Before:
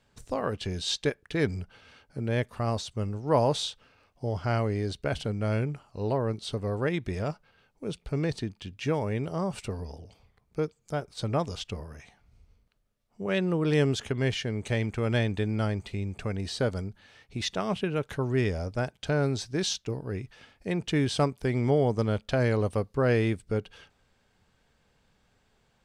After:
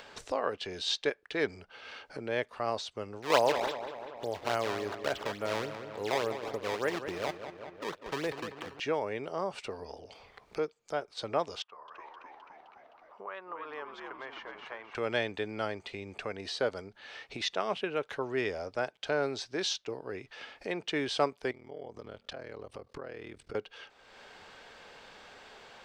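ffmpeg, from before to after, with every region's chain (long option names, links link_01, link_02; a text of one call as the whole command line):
ffmpeg -i in.wav -filter_complex "[0:a]asettb=1/sr,asplit=3[link_01][link_02][link_03];[link_01]atrim=end=3.224[link_04];[link_02]atrim=start=3.22:end=8.8,asetpts=PTS-STARTPTS,afade=type=in:duration=0.004:curve=qsin,afade=type=out:start_time=5.576:duration=0.004:curve=qsin,acrusher=samples=18:mix=1:aa=0.000001:lfo=1:lforange=28.8:lforate=3.5,asplit=2[link_05][link_06];[link_06]adelay=194,lowpass=frequency=3400:poles=1,volume=-9.5dB,asplit=2[link_07][link_08];[link_08]adelay=194,lowpass=frequency=3400:poles=1,volume=0.51,asplit=2[link_09][link_10];[link_10]adelay=194,lowpass=frequency=3400:poles=1,volume=0.51,asplit=2[link_11][link_12];[link_12]adelay=194,lowpass=frequency=3400:poles=1,volume=0.51,asplit=2[link_13][link_14];[link_14]adelay=194,lowpass=frequency=3400:poles=1,volume=0.51,asplit=2[link_15][link_16];[link_16]adelay=194,lowpass=frequency=3400:poles=1,volume=0.51[link_17];[link_05][link_07][link_09][link_11][link_13][link_15][link_17]amix=inputs=7:normalize=0,atrim=end_sample=246078[link_18];[link_03]atrim=start=8.796[link_19];[link_04][link_18]acrossfade=duration=0.004:curve1=hsin:curve2=qsin[link_20];[link_20][link_19]acrossfade=duration=0.004:curve1=qsin:curve2=hsin,asettb=1/sr,asplit=3[link_21][link_22][link_23];[link_21]atrim=end=11.624[link_24];[link_22]atrim=start=11.62:end=14.95,asetpts=PTS-STARTPTS,afade=type=in:duration=0.004:curve=qsin,afade=type=out:start_time=3.326:duration=0.004:curve=qsin,bandpass=frequency=1100:width_type=q:width=4.4,asplit=7[link_25][link_26][link_27][link_28][link_29][link_30][link_31];[link_26]adelay=259,afreqshift=-86,volume=-6dB[link_32];[link_27]adelay=518,afreqshift=-172,volume=-12.6dB[link_33];[link_28]adelay=777,afreqshift=-258,volume=-19.1dB[link_34];[link_29]adelay=1036,afreqshift=-344,volume=-25.7dB[link_35];[link_30]adelay=1295,afreqshift=-430,volume=-32.2dB[link_36];[link_31]adelay=1554,afreqshift=-516,volume=-38.8dB[link_37];[link_25][link_32][link_33][link_34][link_35][link_36][link_37]amix=inputs=7:normalize=0,atrim=end_sample=146853[link_38];[link_23]atrim=start=14.946[link_39];[link_24][link_38]acrossfade=duration=0.004:curve1=hsin:curve2=qsin[link_40];[link_40][link_39]acrossfade=duration=0.004:curve1=qsin:curve2=hsin,asettb=1/sr,asplit=3[link_41][link_42][link_43];[link_41]atrim=end=21.514[link_44];[link_42]atrim=start=21.51:end=23.55,asetpts=PTS-STARTPTS,afade=type=in:duration=0.004:curve=qsin,afade=type=out:start_time=2.036:duration=0.004:curve=qsin,equalizer=frequency=66:width=0.62:gain=8,acompressor=threshold=-36dB:ratio=8:attack=3.2:release=140:knee=1:detection=peak,aeval=exprs='val(0)*sin(2*PI*20*n/s)':channel_layout=same[link_45];[link_43]atrim=start=23.546[link_46];[link_44][link_45]acrossfade=duration=0.004:curve1=hsin:curve2=qsin[link_47];[link_47][link_46]acrossfade=duration=0.004:curve1=qsin:curve2=hsin,acrossover=split=340 5900:gain=0.1 1 0.178[link_48][link_49][link_50];[link_48][link_49][link_50]amix=inputs=3:normalize=0,acompressor=mode=upward:threshold=-35dB:ratio=2.5" out.wav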